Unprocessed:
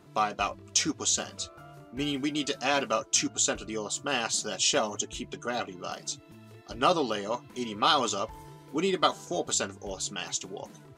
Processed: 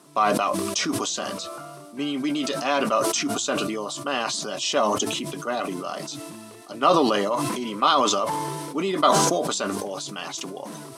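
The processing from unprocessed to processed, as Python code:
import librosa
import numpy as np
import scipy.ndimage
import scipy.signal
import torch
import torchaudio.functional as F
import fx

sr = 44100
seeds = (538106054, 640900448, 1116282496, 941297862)

y = fx.dmg_noise_colour(x, sr, seeds[0], colour='violet', level_db=-47.0)
y = fx.cabinet(y, sr, low_hz=150.0, low_slope=24, high_hz=9500.0, hz=(280.0, 610.0, 1100.0, 7000.0), db=(4, 6, 9, -7))
y = fx.sustainer(y, sr, db_per_s=24.0)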